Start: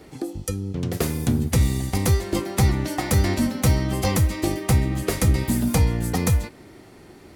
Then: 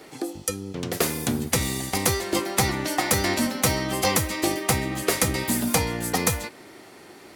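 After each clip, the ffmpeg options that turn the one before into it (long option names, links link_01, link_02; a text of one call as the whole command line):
ffmpeg -i in.wav -af "highpass=frequency=570:poles=1,volume=5dB" out.wav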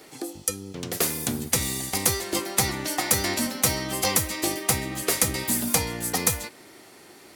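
ffmpeg -i in.wav -af "highshelf=frequency=4100:gain=7.5,volume=-4dB" out.wav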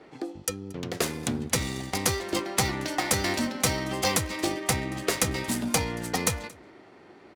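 ffmpeg -i in.wav -af "adynamicsmooth=sensitivity=4.5:basefreq=2100,aecho=1:1:228:0.0631" out.wav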